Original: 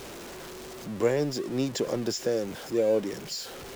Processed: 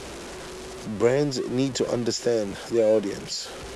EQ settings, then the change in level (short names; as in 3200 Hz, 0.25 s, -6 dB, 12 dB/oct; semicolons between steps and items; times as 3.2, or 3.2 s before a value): steep low-pass 11000 Hz 36 dB/oct; bell 62 Hz +12 dB 0.3 oct; +4.0 dB